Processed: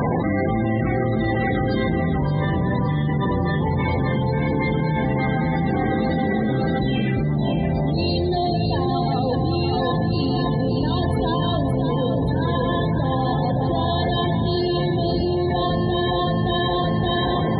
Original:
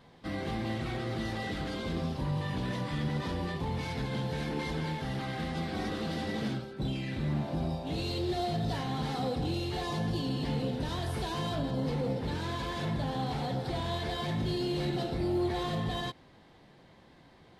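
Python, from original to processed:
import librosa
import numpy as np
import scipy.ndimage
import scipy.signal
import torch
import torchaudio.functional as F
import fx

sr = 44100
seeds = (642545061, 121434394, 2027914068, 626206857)

p1 = scipy.signal.sosfilt(scipy.signal.butter(2, 55.0, 'highpass', fs=sr, output='sos'), x)
p2 = fx.high_shelf(p1, sr, hz=9300.0, db=5.5)
p3 = fx.spec_topn(p2, sr, count=32)
p4 = p3 + fx.echo_feedback(p3, sr, ms=570, feedback_pct=33, wet_db=-4, dry=0)
p5 = fx.env_flatten(p4, sr, amount_pct=100)
y = F.gain(torch.from_numpy(p5), 6.5).numpy()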